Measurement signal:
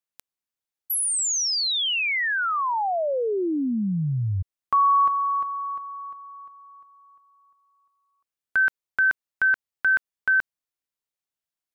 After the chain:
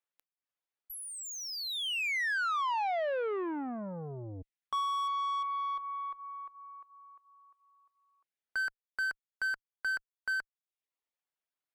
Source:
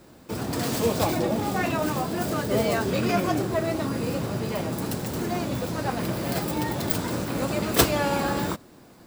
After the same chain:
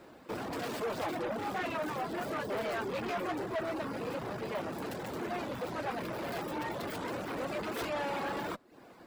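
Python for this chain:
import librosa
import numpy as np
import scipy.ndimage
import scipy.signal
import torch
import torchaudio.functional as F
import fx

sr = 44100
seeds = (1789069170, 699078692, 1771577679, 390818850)

y = fx.tube_stage(x, sr, drive_db=31.0, bias=0.2)
y = fx.bass_treble(y, sr, bass_db=-11, treble_db=-12)
y = fx.dereverb_blind(y, sr, rt60_s=0.53)
y = y * librosa.db_to_amplitude(1.5)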